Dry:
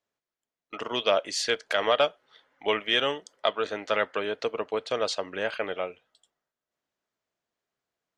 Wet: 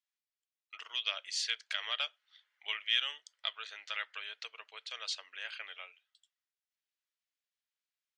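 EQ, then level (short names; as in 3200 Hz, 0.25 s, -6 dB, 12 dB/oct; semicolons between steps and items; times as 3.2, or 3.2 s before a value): Butterworth band-pass 5400 Hz, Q 0.62; high shelf 7400 Hz -10.5 dB; -2.0 dB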